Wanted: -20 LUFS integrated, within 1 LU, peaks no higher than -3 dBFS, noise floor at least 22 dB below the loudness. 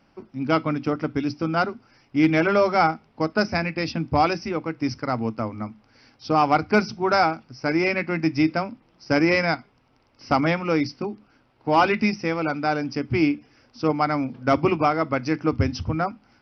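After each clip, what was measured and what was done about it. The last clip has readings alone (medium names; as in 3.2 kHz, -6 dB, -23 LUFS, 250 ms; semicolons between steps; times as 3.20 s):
loudness -23.0 LUFS; peak level -8.0 dBFS; loudness target -20.0 LUFS
-> trim +3 dB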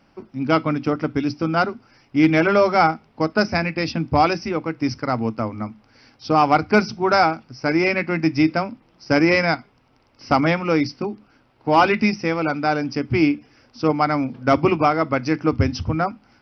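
loudness -20.0 LUFS; peak level -5.0 dBFS; noise floor -59 dBFS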